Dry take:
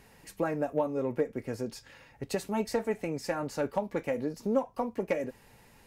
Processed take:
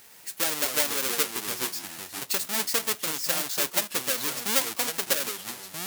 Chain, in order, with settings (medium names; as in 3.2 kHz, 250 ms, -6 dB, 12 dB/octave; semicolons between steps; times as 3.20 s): square wave that keeps the level; ever faster or slower copies 124 ms, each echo -4 st, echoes 2, each echo -6 dB; tilt EQ +4.5 dB/octave; trim -3.5 dB